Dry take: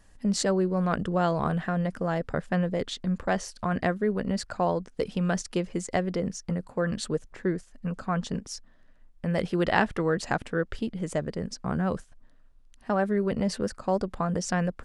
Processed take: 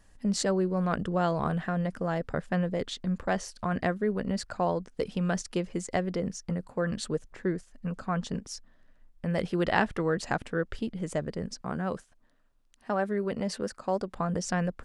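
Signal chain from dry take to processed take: 11.61–14.16 low shelf 130 Hz -11 dB; gain -2 dB

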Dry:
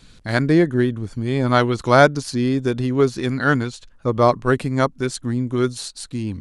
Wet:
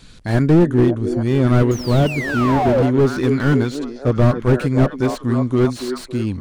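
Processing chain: delay with a stepping band-pass 0.28 s, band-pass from 320 Hz, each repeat 0.7 oct, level -8 dB; painted sound fall, 1.71–2.83, 460–6900 Hz -18 dBFS; slew limiter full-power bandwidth 68 Hz; gain +4 dB

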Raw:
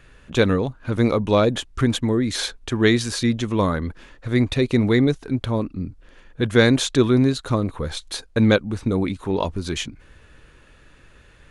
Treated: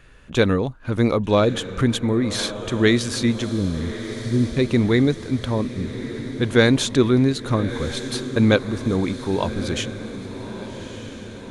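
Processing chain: 3.49–4.57 inverse Chebyshev low-pass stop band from 1600 Hz, stop band 70 dB; diffused feedback echo 1.205 s, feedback 57%, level -12 dB

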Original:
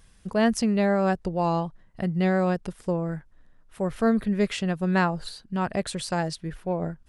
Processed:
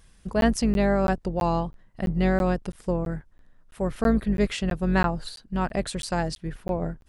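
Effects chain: octaver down 2 oct, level -5 dB; crackling interface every 0.33 s, samples 512, zero, from 0.41

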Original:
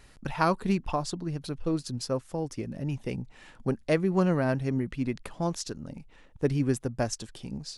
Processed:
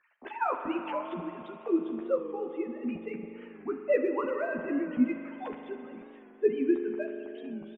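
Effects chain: sine-wave speech; notches 50/100/150/200/250/300 Hz; phaser 1.4 Hz, delay 4 ms, feedback 33%; doubler 12 ms -2.5 dB; spring tank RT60 3.3 s, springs 40 ms, chirp 50 ms, DRR 5.5 dB; record warp 45 rpm, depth 100 cents; gain -5.5 dB

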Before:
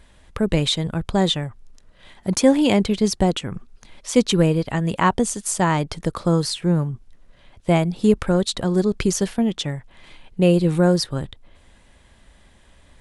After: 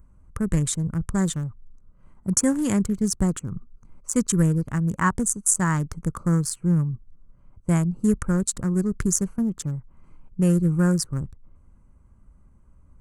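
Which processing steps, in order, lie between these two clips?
Wiener smoothing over 25 samples; EQ curve 160 Hz 0 dB, 730 Hz -15 dB, 1200 Hz 0 dB, 1700 Hz 0 dB, 2500 Hz -13 dB, 3900 Hz -17 dB, 7000 Hz +8 dB

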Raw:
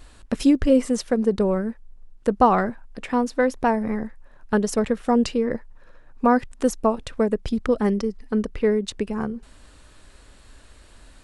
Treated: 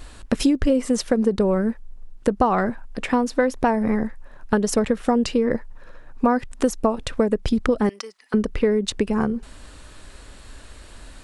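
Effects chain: 7.89–8.34 HPF 1200 Hz 12 dB/oct; compressor 6:1, threshold -22 dBFS, peak gain reduction 11 dB; gain +6.5 dB

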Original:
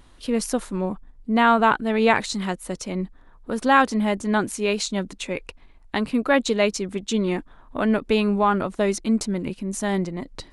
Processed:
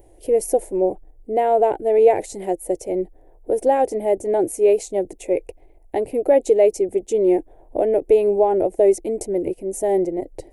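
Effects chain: in parallel at +2.5 dB: limiter -13.5 dBFS, peak gain reduction 9 dB; on the sum: EQ curve 110 Hz 0 dB, 230 Hz -14 dB, 330 Hz +10 dB, 510 Hz +10 dB, 770 Hz +7 dB, 1200 Hz -25 dB, 2100 Hz -7 dB, 3900 Hz -19 dB, 6000 Hz -7 dB, 13000 Hz +9 dB; gain -7 dB

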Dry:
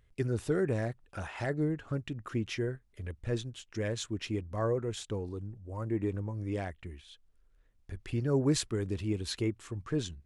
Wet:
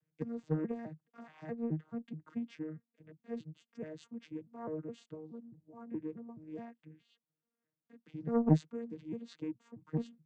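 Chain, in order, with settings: arpeggiated vocoder bare fifth, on D#3, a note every 0.212 s; added harmonics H 3 -13 dB, 5 -36 dB, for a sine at -15 dBFS; gain +1 dB

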